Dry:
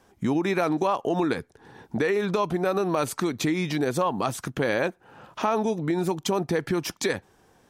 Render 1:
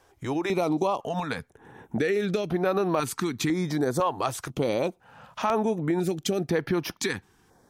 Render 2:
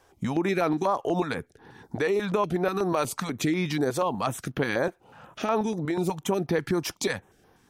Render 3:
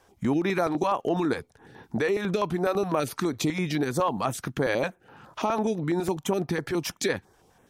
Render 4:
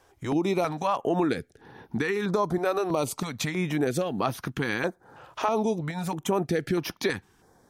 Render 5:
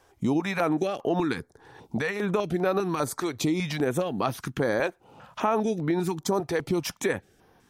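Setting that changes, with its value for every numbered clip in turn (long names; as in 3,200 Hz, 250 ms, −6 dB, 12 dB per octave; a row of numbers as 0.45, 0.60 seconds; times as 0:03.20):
notch on a step sequencer, speed: 2, 8.2, 12, 3.1, 5 Hertz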